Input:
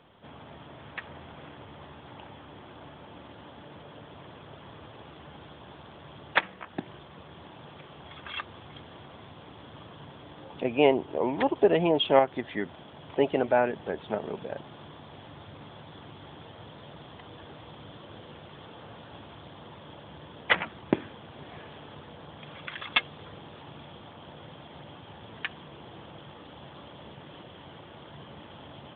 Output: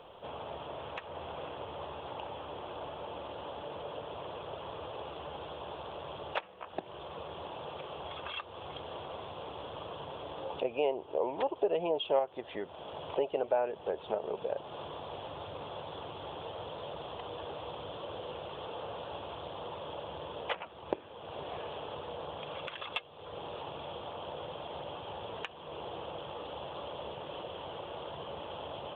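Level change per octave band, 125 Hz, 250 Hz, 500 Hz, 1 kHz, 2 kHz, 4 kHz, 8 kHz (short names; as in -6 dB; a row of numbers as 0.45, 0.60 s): -7.0 dB, -11.5 dB, -4.5 dB, -3.5 dB, -11.5 dB, -5.5 dB, n/a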